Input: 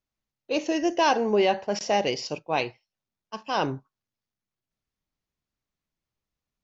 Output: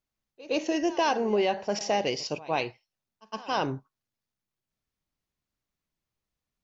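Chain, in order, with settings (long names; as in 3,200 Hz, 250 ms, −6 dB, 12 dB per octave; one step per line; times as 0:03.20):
downward compressor 2 to 1, threshold −24 dBFS, peak gain reduction 4.5 dB
on a send: backwards echo 113 ms −19 dB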